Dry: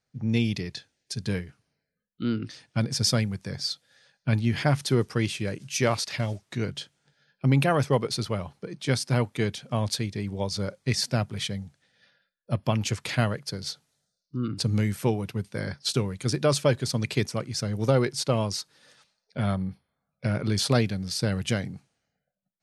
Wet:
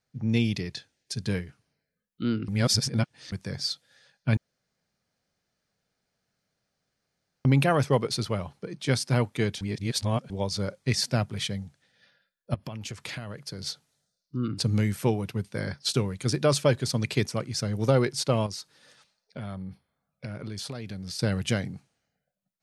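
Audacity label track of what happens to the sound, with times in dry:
2.480000	3.320000	reverse
4.370000	7.450000	room tone
9.610000	10.300000	reverse
12.540000	13.640000	compressor 16:1, threshold -32 dBFS
18.460000	21.190000	compressor, threshold -33 dBFS

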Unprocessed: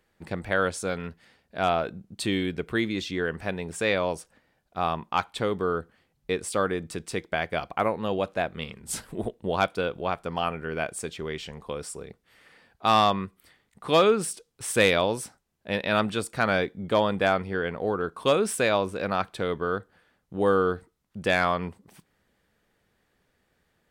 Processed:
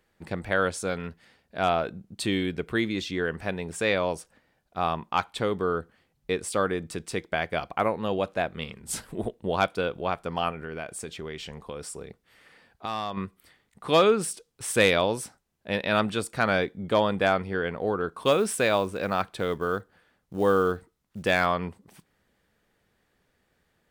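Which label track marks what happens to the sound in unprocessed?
10.500000	13.170000	compressor 2.5:1, threshold -33 dBFS
18.210000	21.460000	short-mantissa float mantissa of 4-bit

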